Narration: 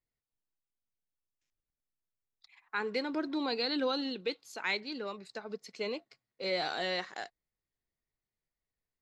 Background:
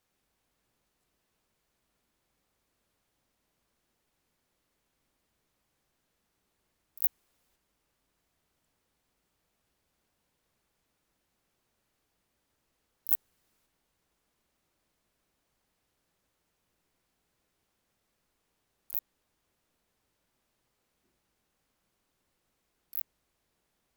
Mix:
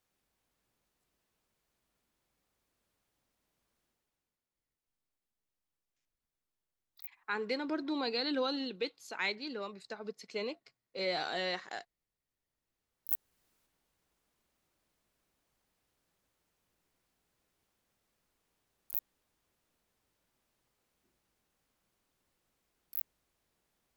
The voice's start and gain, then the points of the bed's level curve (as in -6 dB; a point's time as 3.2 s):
4.55 s, -1.5 dB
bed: 3.84 s -3.5 dB
4.61 s -19 dB
12.21 s -19 dB
13.41 s -2 dB